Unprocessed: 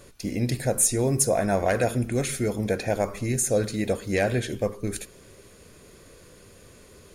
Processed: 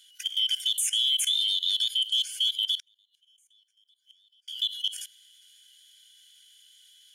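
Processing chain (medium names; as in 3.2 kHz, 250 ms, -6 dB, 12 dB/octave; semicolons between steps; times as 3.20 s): four frequency bands reordered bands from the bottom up 2413; treble shelf 2 kHz +11 dB; level held to a coarse grid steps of 19 dB; peak limiter -17.5 dBFS, peak gain reduction 10 dB; 2.75–4.48 s: inverted gate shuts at -27 dBFS, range -38 dB; brick-wall FIR high-pass 1.4 kHz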